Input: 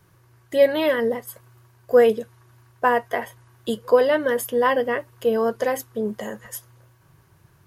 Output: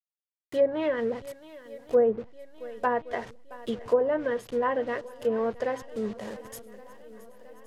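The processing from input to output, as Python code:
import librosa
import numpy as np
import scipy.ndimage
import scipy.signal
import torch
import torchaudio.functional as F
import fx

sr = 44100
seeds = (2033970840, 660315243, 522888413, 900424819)

y = fx.delta_hold(x, sr, step_db=-33.5)
y = fx.low_shelf(y, sr, hz=470.0, db=2.5)
y = fx.echo_swing(y, sr, ms=1119, ratio=1.5, feedback_pct=52, wet_db=-19.5)
y = fx.env_lowpass_down(y, sr, base_hz=870.0, full_db=-11.5)
y = y * 10.0 ** (-7.5 / 20.0)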